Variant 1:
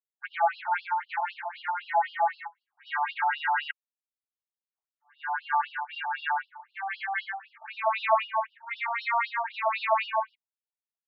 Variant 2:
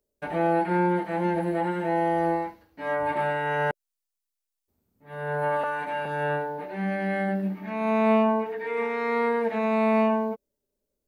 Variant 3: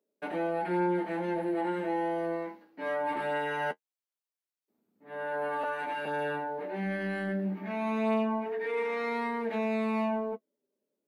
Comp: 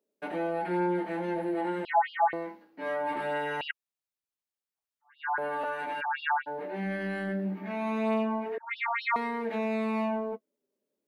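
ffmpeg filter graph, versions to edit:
-filter_complex "[0:a]asplit=4[a][b][c][d];[2:a]asplit=5[e][f][g][h][i];[e]atrim=end=1.852[j];[a]atrim=start=1.848:end=2.332[k];[f]atrim=start=2.328:end=3.612[l];[b]atrim=start=3.608:end=5.382[m];[g]atrim=start=5.378:end=6.02[n];[c]atrim=start=6:end=6.48[o];[h]atrim=start=6.46:end=8.582[p];[d]atrim=start=8.578:end=9.162[q];[i]atrim=start=9.158[r];[j][k]acrossfade=d=0.004:c1=hsin:c2=hsin[s];[s][l]acrossfade=d=0.004:c1=hsin:c2=hsin[t];[t][m]acrossfade=d=0.004:c1=hsin:c2=hsin[u];[u][n]acrossfade=d=0.004:c1=hsin:c2=hsin[v];[v][o]acrossfade=d=0.02:c1=tri:c2=tri[w];[w][p]acrossfade=d=0.02:c1=tri:c2=tri[x];[x][q]acrossfade=d=0.004:c1=hsin:c2=hsin[y];[y][r]acrossfade=d=0.004:c1=hsin:c2=hsin"

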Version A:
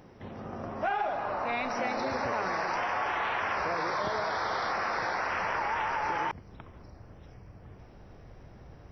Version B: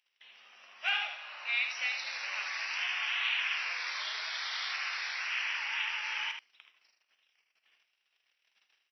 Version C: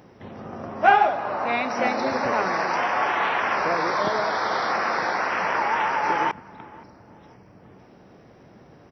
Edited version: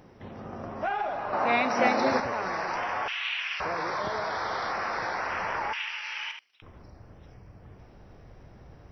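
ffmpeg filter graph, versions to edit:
-filter_complex "[1:a]asplit=2[a][b];[0:a]asplit=4[c][d][e][f];[c]atrim=end=1.332[g];[2:a]atrim=start=1.328:end=2.202[h];[d]atrim=start=2.198:end=3.082[i];[a]atrim=start=3.078:end=3.602[j];[e]atrim=start=3.598:end=5.732[k];[b]atrim=start=5.728:end=6.622[l];[f]atrim=start=6.618[m];[g][h]acrossfade=d=0.004:c1=hsin:c2=hsin[n];[n][i]acrossfade=d=0.004:c1=hsin:c2=hsin[o];[o][j]acrossfade=d=0.004:c1=hsin:c2=hsin[p];[p][k]acrossfade=d=0.004:c1=hsin:c2=hsin[q];[q][l]acrossfade=d=0.004:c1=hsin:c2=hsin[r];[r][m]acrossfade=d=0.004:c1=hsin:c2=hsin"

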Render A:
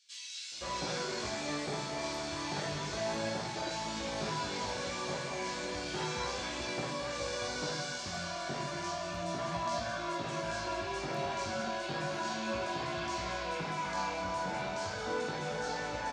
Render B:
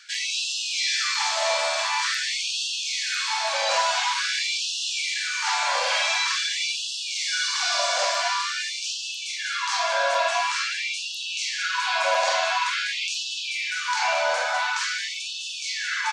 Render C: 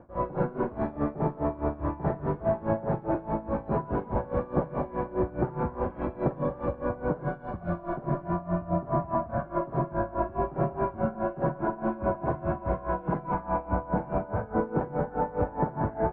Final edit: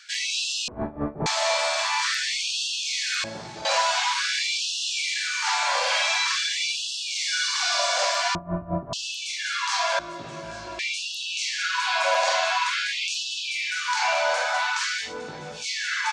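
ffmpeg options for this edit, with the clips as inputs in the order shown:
-filter_complex "[2:a]asplit=2[a][b];[0:a]asplit=3[c][d][e];[1:a]asplit=6[f][g][h][i][j][k];[f]atrim=end=0.682[l];[a]atrim=start=0.678:end=1.262[m];[g]atrim=start=1.258:end=3.242[n];[c]atrim=start=3.238:end=3.652[o];[h]atrim=start=3.648:end=8.352[p];[b]atrim=start=8.348:end=8.932[q];[i]atrim=start=8.928:end=9.992[r];[d]atrim=start=9.988:end=10.792[s];[j]atrim=start=10.788:end=15.16[t];[e]atrim=start=15:end=15.66[u];[k]atrim=start=15.5[v];[l][m]acrossfade=d=0.004:c1=hsin:c2=hsin[w];[w][n]acrossfade=d=0.004:c1=hsin:c2=hsin[x];[x][o]acrossfade=d=0.004:c1=hsin:c2=hsin[y];[y][p]acrossfade=d=0.004:c1=hsin:c2=hsin[z];[z][q]acrossfade=d=0.004:c1=hsin:c2=hsin[aa];[aa][r]acrossfade=d=0.004:c1=hsin:c2=hsin[ab];[ab][s]acrossfade=d=0.004:c1=hsin:c2=hsin[ac];[ac][t]acrossfade=d=0.004:c1=hsin:c2=hsin[ad];[ad][u]acrossfade=d=0.16:c1=tri:c2=tri[ae];[ae][v]acrossfade=d=0.16:c1=tri:c2=tri"

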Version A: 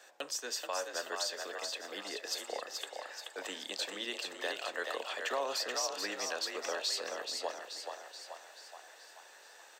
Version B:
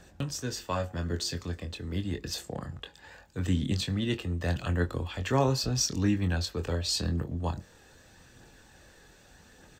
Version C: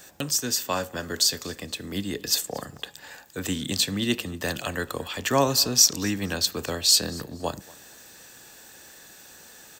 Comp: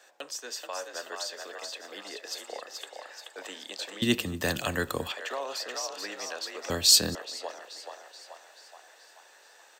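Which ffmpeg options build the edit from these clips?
-filter_complex "[2:a]asplit=2[a][b];[0:a]asplit=3[c][d][e];[c]atrim=end=4.022[f];[a]atrim=start=4.018:end=5.122[g];[d]atrim=start=5.118:end=6.702[h];[b]atrim=start=6.698:end=7.152[i];[e]atrim=start=7.148[j];[f][g]acrossfade=d=0.004:c1=hsin:c2=hsin[k];[k][h]acrossfade=d=0.004:c1=hsin:c2=hsin[l];[l][i]acrossfade=d=0.004:c1=hsin:c2=hsin[m];[m][j]acrossfade=d=0.004:c1=hsin:c2=hsin"

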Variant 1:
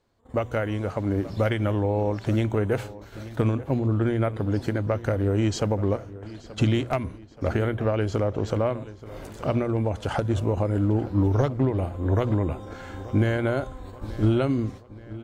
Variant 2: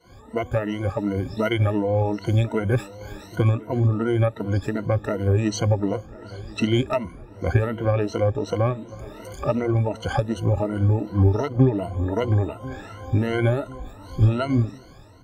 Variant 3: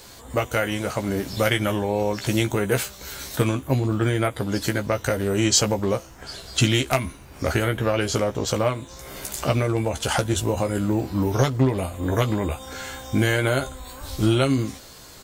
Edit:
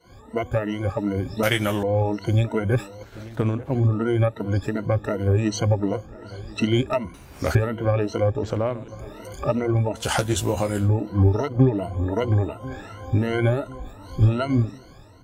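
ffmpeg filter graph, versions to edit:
-filter_complex "[2:a]asplit=3[a][b][c];[0:a]asplit=2[d][e];[1:a]asplit=6[f][g][h][i][j][k];[f]atrim=end=1.432[l];[a]atrim=start=1.428:end=1.832[m];[g]atrim=start=1.828:end=3.032[n];[d]atrim=start=3.028:end=3.752[o];[h]atrim=start=3.748:end=7.142[p];[b]atrim=start=7.138:end=7.552[q];[i]atrim=start=7.548:end=8.432[r];[e]atrim=start=8.428:end=8.882[s];[j]atrim=start=8.878:end=10.09[t];[c]atrim=start=9.93:end=10.91[u];[k]atrim=start=10.75[v];[l][m]acrossfade=d=0.004:c1=hsin:c2=hsin[w];[w][n]acrossfade=d=0.004:c1=hsin:c2=hsin[x];[x][o]acrossfade=d=0.004:c1=hsin:c2=hsin[y];[y][p]acrossfade=d=0.004:c1=hsin:c2=hsin[z];[z][q]acrossfade=d=0.004:c1=hsin:c2=hsin[aa];[aa][r]acrossfade=d=0.004:c1=hsin:c2=hsin[ab];[ab][s]acrossfade=d=0.004:c1=hsin:c2=hsin[ac];[ac][t]acrossfade=d=0.004:c1=hsin:c2=hsin[ad];[ad][u]acrossfade=d=0.16:c1=tri:c2=tri[ae];[ae][v]acrossfade=d=0.16:c1=tri:c2=tri"

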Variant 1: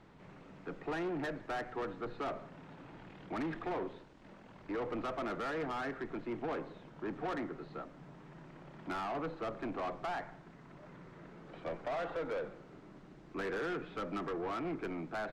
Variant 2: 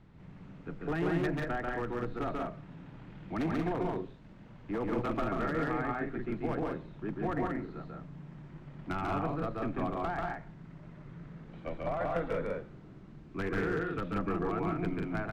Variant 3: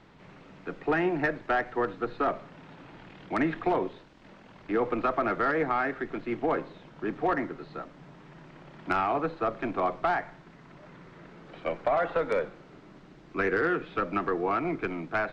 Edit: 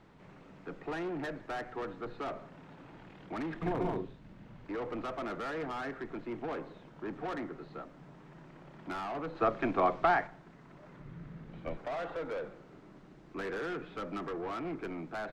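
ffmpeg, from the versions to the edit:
-filter_complex "[1:a]asplit=2[a][b];[0:a]asplit=4[c][d][e][f];[c]atrim=end=3.622[g];[a]atrim=start=3.618:end=4.652[h];[d]atrim=start=4.648:end=9.352[i];[2:a]atrim=start=9.348:end=10.272[j];[e]atrim=start=10.268:end=11.002[k];[b]atrim=start=10.998:end=11.772[l];[f]atrim=start=11.768[m];[g][h]acrossfade=d=0.004:c1=hsin:c2=hsin[n];[n][i]acrossfade=d=0.004:c1=hsin:c2=hsin[o];[o][j]acrossfade=d=0.004:c1=hsin:c2=hsin[p];[p][k]acrossfade=d=0.004:c1=hsin:c2=hsin[q];[q][l]acrossfade=d=0.004:c1=hsin:c2=hsin[r];[r][m]acrossfade=d=0.004:c1=hsin:c2=hsin"

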